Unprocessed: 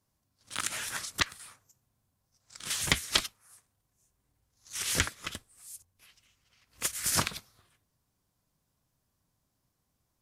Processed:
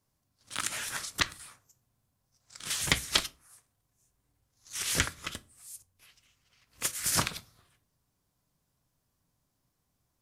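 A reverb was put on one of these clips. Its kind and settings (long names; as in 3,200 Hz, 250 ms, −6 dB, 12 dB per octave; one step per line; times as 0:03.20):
rectangular room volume 160 cubic metres, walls furnished, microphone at 0.31 metres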